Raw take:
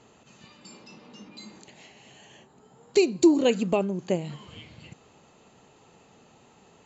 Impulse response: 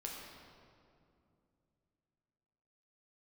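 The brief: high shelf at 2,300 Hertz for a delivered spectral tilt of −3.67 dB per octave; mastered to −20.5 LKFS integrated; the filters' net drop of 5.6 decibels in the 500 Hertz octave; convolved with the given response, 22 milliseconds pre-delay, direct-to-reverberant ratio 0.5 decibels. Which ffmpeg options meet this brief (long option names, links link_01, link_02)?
-filter_complex "[0:a]equalizer=frequency=500:width_type=o:gain=-8.5,highshelf=frequency=2300:gain=9,asplit=2[link_01][link_02];[1:a]atrim=start_sample=2205,adelay=22[link_03];[link_02][link_03]afir=irnorm=-1:irlink=0,volume=0.5dB[link_04];[link_01][link_04]amix=inputs=2:normalize=0,volume=4dB"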